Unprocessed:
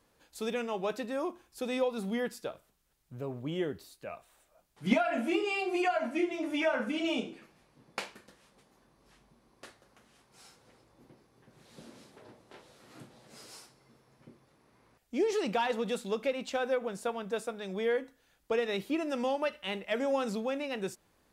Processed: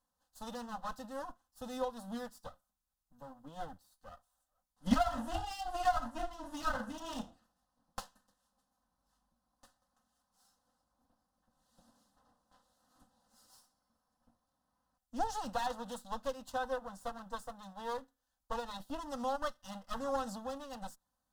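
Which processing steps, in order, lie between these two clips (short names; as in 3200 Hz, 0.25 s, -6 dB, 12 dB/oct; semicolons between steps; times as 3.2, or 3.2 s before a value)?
minimum comb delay 3.9 ms; fixed phaser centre 950 Hz, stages 4; upward expander 1.5:1, over -58 dBFS; gain +4 dB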